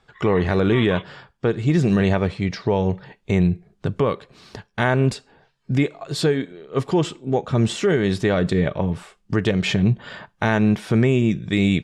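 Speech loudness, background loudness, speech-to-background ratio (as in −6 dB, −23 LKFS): −21.5 LKFS, −37.5 LKFS, 16.0 dB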